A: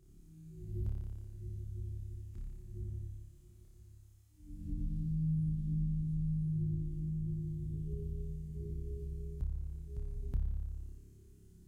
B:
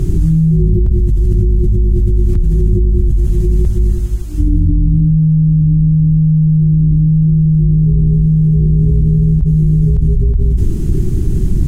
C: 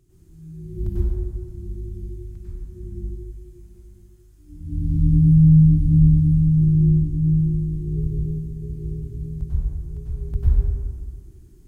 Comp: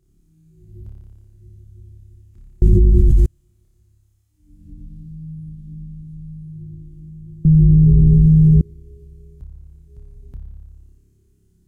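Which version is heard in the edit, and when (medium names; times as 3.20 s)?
A
2.62–3.26 s: from B
7.45–8.61 s: from B
not used: C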